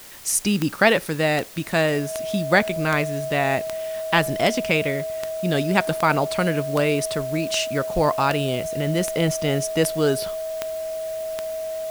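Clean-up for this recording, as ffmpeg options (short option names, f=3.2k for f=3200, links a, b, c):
-af "adeclick=t=4,bandreject=f=640:w=30,afwtdn=0.0071"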